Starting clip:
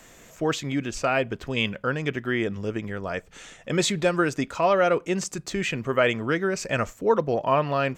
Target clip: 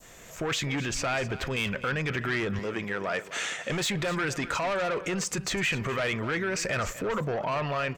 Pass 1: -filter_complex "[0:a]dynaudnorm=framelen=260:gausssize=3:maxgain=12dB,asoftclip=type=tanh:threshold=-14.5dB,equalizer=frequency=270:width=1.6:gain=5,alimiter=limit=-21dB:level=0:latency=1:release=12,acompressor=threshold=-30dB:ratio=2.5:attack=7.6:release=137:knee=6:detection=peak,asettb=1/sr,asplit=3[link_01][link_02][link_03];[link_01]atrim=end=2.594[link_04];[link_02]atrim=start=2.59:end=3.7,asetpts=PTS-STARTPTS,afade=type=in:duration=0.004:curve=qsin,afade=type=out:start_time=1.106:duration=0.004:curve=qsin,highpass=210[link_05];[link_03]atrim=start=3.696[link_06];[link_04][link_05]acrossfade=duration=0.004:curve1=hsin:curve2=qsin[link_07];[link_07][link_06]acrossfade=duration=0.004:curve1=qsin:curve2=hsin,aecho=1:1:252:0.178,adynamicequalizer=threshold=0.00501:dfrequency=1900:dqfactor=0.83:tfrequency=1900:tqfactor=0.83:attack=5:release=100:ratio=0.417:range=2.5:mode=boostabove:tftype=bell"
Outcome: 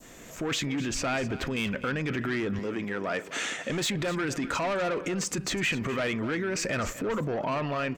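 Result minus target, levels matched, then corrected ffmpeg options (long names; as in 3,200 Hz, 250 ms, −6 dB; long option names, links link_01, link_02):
250 Hz band +3.0 dB
-filter_complex "[0:a]dynaudnorm=framelen=260:gausssize=3:maxgain=12dB,asoftclip=type=tanh:threshold=-14.5dB,equalizer=frequency=270:width=1.6:gain=-5,alimiter=limit=-21dB:level=0:latency=1:release=12,acompressor=threshold=-30dB:ratio=2.5:attack=7.6:release=137:knee=6:detection=peak,asettb=1/sr,asplit=3[link_01][link_02][link_03];[link_01]atrim=end=2.594[link_04];[link_02]atrim=start=2.59:end=3.7,asetpts=PTS-STARTPTS,afade=type=in:duration=0.004:curve=qsin,afade=type=out:start_time=1.106:duration=0.004:curve=qsin,highpass=210[link_05];[link_03]atrim=start=3.696[link_06];[link_04][link_05]acrossfade=duration=0.004:curve1=hsin:curve2=qsin[link_07];[link_07][link_06]acrossfade=duration=0.004:curve1=qsin:curve2=hsin,aecho=1:1:252:0.178,adynamicequalizer=threshold=0.00501:dfrequency=1900:dqfactor=0.83:tfrequency=1900:tqfactor=0.83:attack=5:release=100:ratio=0.417:range=2.5:mode=boostabove:tftype=bell"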